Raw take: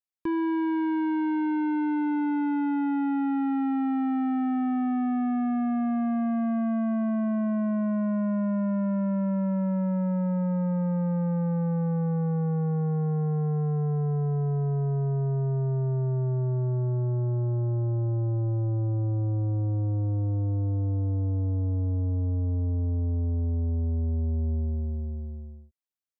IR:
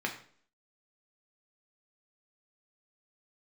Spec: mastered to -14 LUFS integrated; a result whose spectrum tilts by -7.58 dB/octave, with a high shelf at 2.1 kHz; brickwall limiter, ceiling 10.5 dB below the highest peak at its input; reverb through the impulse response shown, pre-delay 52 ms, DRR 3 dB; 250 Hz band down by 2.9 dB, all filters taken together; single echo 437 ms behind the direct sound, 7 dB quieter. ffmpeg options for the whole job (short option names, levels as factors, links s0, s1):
-filter_complex "[0:a]equalizer=f=250:t=o:g=-4,highshelf=f=2100:g=7.5,alimiter=level_in=3.35:limit=0.0631:level=0:latency=1,volume=0.299,aecho=1:1:437:0.447,asplit=2[s0][s1];[1:a]atrim=start_sample=2205,adelay=52[s2];[s1][s2]afir=irnorm=-1:irlink=0,volume=0.355[s3];[s0][s3]amix=inputs=2:normalize=0,volume=11.9"